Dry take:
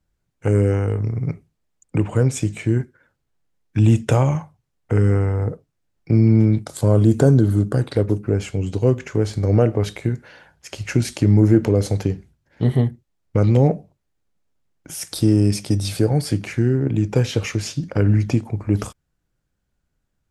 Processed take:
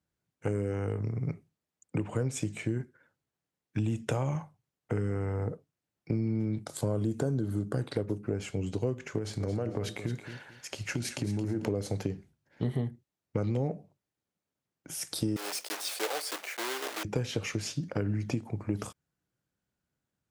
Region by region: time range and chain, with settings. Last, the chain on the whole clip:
9.18–11.66 s: compression, threshold -18 dBFS + feedback delay 222 ms, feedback 22%, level -12 dB + tape noise reduction on one side only encoder only
15.36–17.05 s: block-companded coder 3-bit + high-pass 490 Hz 24 dB/octave
whole clip: high-pass 110 Hz; compression, threshold -20 dBFS; trim -6.5 dB

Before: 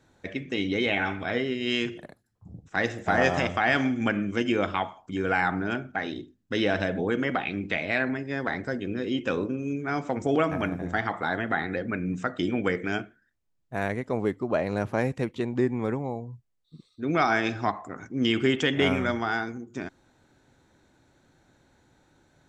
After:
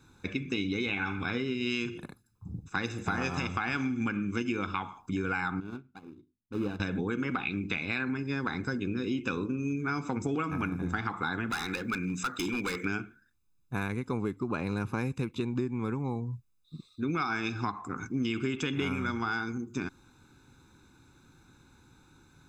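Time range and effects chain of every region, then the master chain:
5.60–6.80 s: median filter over 25 samples + low-pass 2 kHz 6 dB/octave + upward expansion 2.5:1, over -38 dBFS
11.50–12.85 s: tilt EQ +2.5 dB/octave + hard clipper -27.5 dBFS
whole clip: treble shelf 6.1 kHz +5 dB; comb 0.8 ms, depth 83%; compression, threshold -28 dBFS

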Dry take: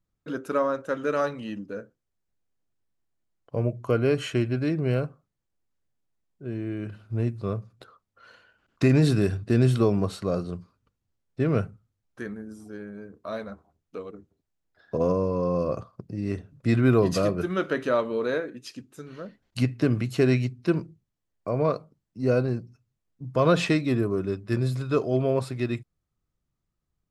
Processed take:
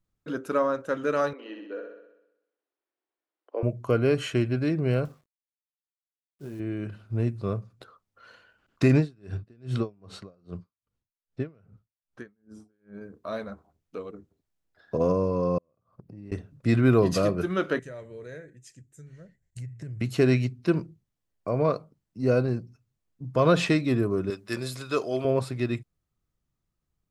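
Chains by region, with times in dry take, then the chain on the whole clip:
1.33–3.63 s: steep high-pass 300 Hz 48 dB/octave + distance through air 260 m + flutter echo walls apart 10.9 m, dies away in 0.87 s
5.05–6.60 s: companded quantiser 6-bit + compression, threshold -33 dBFS + doubling 21 ms -9.5 dB
8.97–13.01 s: distance through air 60 m + logarithmic tremolo 2.5 Hz, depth 37 dB
15.58–16.32 s: peaking EQ 6 kHz -10 dB 1.9 oct + compression 3:1, threshold -44 dBFS + inverted gate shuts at -34 dBFS, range -29 dB
17.79–20.01 s: FFT filter 160 Hz 0 dB, 230 Hz -19 dB, 360 Hz -14 dB, 640 Hz -14 dB, 1.2 kHz -24 dB, 1.9 kHz -6 dB, 2.6 kHz -17 dB, 4.6 kHz -17 dB, 7.5 kHz +2 dB, 11 kHz -10 dB + compression 4:1, threshold -36 dBFS
24.30–25.25 s: high-pass 460 Hz 6 dB/octave + treble shelf 2.6 kHz +8 dB
whole clip: none

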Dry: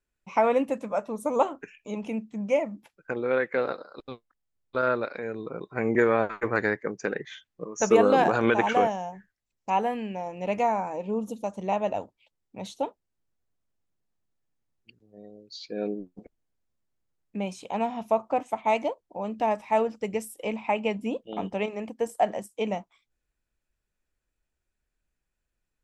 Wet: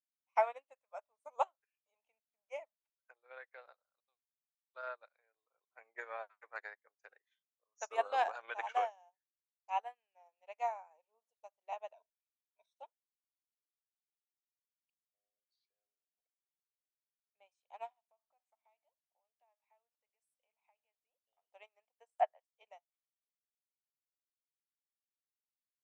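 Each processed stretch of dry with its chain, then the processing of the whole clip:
11.94–12.76 s: rippled EQ curve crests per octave 1.6, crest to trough 18 dB + level held to a coarse grid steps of 11 dB
15.42–16.12 s: compression 20:1, threshold -40 dBFS + treble shelf 10 kHz -6 dB
17.92–21.48 s: hum notches 60/120/180/240/300 Hz + compression, threshold -37 dBFS
22.15–22.63 s: high-pass 430 Hz + low-pass that closes with the level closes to 2.2 kHz, closed at -23.5 dBFS
whole clip: elliptic band-pass 660–9800 Hz, stop band 60 dB; upward expansion 2.5:1, over -44 dBFS; trim -5 dB

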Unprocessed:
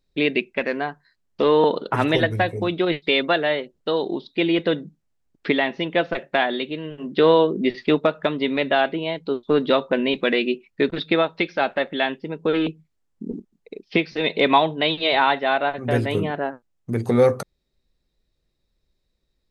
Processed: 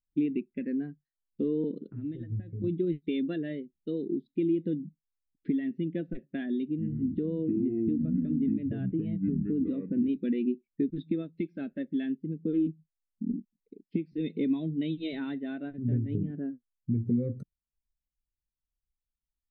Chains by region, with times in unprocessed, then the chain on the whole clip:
1.87–2.64 s: compression 5:1, threshold -29 dBFS + loudspeaker Doppler distortion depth 0.1 ms
6.68–10.09 s: ever faster or slower copies 95 ms, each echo -6 st, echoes 2, each echo -6 dB + tone controls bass +2 dB, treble -10 dB + compression 2:1, threshold -20 dBFS
whole clip: FFT filter 280 Hz 0 dB, 870 Hz -28 dB, 1.7 kHz -15 dB; compression 6:1, threshold -27 dBFS; spectral contrast expander 1.5:1

